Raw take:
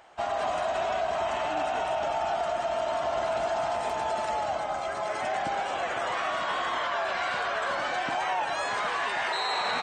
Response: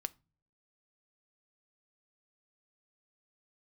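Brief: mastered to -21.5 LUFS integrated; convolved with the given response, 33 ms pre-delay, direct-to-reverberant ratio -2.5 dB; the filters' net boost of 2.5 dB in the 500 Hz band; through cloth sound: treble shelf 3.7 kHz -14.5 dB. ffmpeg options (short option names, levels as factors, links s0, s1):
-filter_complex "[0:a]equalizer=f=500:t=o:g=4.5,asplit=2[s0][s1];[1:a]atrim=start_sample=2205,adelay=33[s2];[s1][s2]afir=irnorm=-1:irlink=0,volume=1.58[s3];[s0][s3]amix=inputs=2:normalize=0,highshelf=f=3700:g=-14.5,volume=1.33"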